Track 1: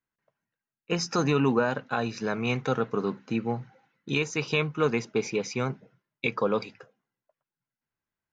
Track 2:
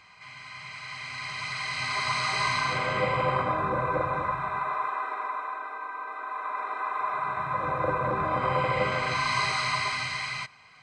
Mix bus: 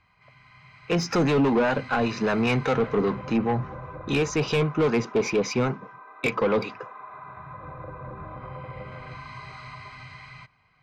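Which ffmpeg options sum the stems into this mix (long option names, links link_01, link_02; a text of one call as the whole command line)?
ffmpeg -i stem1.wav -i stem2.wav -filter_complex "[0:a]lowshelf=frequency=380:gain=10.5,asplit=2[link_01][link_02];[link_02]highpass=frequency=720:poles=1,volume=16dB,asoftclip=type=tanh:threshold=-11.5dB[link_03];[link_01][link_03]amix=inputs=2:normalize=0,lowpass=frequency=2300:poles=1,volume=-6dB,acrossover=split=580[link_04][link_05];[link_04]aeval=exprs='val(0)*(1-0.5/2+0.5/2*cos(2*PI*5*n/s))':channel_layout=same[link_06];[link_05]aeval=exprs='val(0)*(1-0.5/2-0.5/2*cos(2*PI*5*n/s))':channel_layout=same[link_07];[link_06][link_07]amix=inputs=2:normalize=0,volume=2.5dB[link_08];[1:a]highshelf=frequency=5500:gain=-6,acompressor=threshold=-30dB:ratio=2.5,aemphasis=mode=reproduction:type=bsi,volume=-9.5dB[link_09];[link_08][link_09]amix=inputs=2:normalize=0,asoftclip=type=tanh:threshold=-15.5dB" out.wav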